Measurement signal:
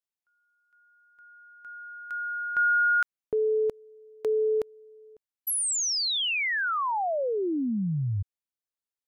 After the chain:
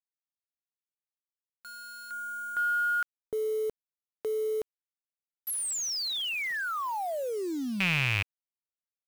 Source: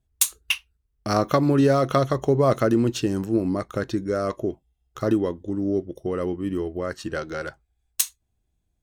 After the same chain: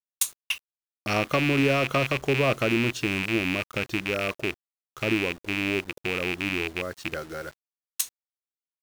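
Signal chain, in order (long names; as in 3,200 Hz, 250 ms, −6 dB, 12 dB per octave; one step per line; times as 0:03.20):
loose part that buzzes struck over −30 dBFS, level −10 dBFS
bit reduction 7 bits
level −5 dB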